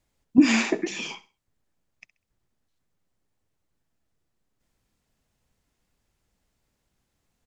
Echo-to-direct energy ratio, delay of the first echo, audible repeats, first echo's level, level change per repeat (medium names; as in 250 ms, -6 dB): -16.5 dB, 66 ms, 2, -17.0 dB, -11.5 dB